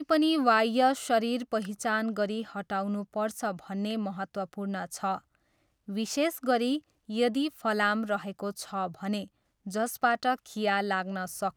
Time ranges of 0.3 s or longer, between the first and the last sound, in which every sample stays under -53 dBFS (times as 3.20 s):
5.35–5.88 s
9.28–9.66 s